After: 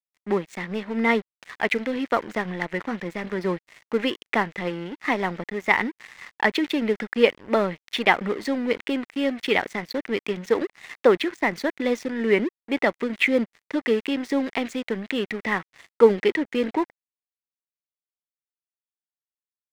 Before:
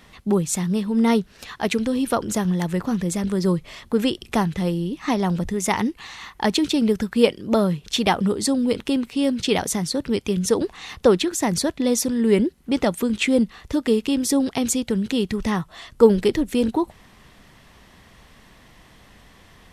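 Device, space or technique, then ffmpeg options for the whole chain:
pocket radio on a weak battery: -af "highpass=290,lowpass=3100,aeval=exprs='sgn(val(0))*max(abs(val(0))-0.0119,0)':channel_layout=same,equalizer=frequency=2000:width_type=o:width=0.57:gain=11"

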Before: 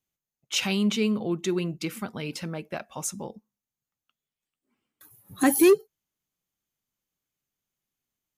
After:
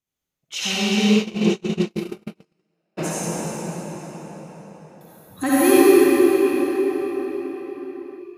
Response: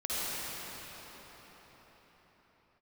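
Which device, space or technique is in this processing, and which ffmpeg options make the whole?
cathedral: -filter_complex "[0:a]highshelf=frequency=9300:gain=-4[link_01];[1:a]atrim=start_sample=2205[link_02];[link_01][link_02]afir=irnorm=-1:irlink=0,asplit=3[link_03][link_04][link_05];[link_03]afade=type=out:start_time=1.15:duration=0.02[link_06];[link_04]agate=range=-49dB:threshold=-16dB:ratio=16:detection=peak,afade=type=in:start_time=1.15:duration=0.02,afade=type=out:start_time=2.97:duration=0.02[link_07];[link_05]afade=type=in:start_time=2.97:duration=0.02[link_08];[link_06][link_07][link_08]amix=inputs=3:normalize=0"

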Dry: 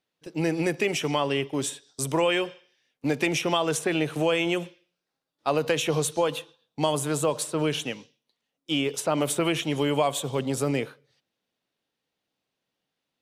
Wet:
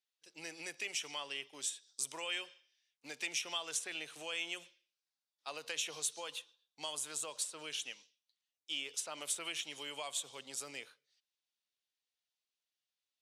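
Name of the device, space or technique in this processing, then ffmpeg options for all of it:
piezo pickup straight into a mixer: -af "lowpass=6900,aderivative,volume=-1.5dB"

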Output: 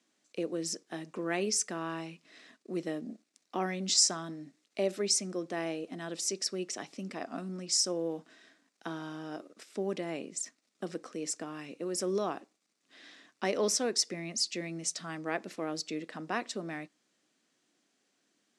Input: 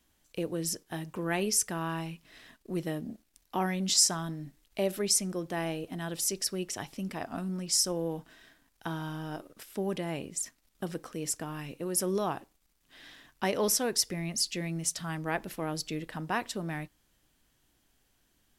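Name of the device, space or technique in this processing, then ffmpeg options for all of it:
television speaker: -af "highpass=frequency=210:width=0.5412,highpass=frequency=210:width=1.3066,equalizer=frequency=900:width_type=q:width=4:gain=-7,equalizer=frequency=1600:width_type=q:width=4:gain=-3,equalizer=frequency=3100:width_type=q:width=4:gain=-5,lowpass=frequency=8000:width=0.5412,lowpass=frequency=8000:width=1.3066"

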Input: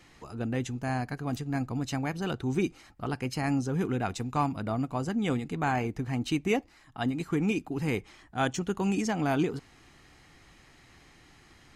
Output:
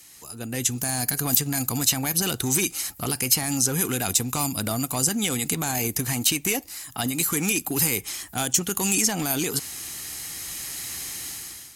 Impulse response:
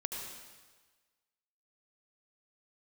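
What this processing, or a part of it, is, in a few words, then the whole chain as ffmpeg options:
FM broadcast chain: -filter_complex "[0:a]highpass=45,dynaudnorm=framelen=490:gausssize=3:maxgain=16.5dB,acrossover=split=630|3200[link_01][link_02][link_03];[link_01]acompressor=threshold=-20dB:ratio=4[link_04];[link_02]acompressor=threshold=-26dB:ratio=4[link_05];[link_03]acompressor=threshold=-36dB:ratio=4[link_06];[link_04][link_05][link_06]amix=inputs=3:normalize=0,aemphasis=mode=production:type=75fm,alimiter=limit=-11.5dB:level=0:latency=1:release=32,asoftclip=type=hard:threshold=-15.5dB,lowpass=frequency=15000:width=0.5412,lowpass=frequency=15000:width=1.3066,aemphasis=mode=production:type=75fm,volume=-4dB"

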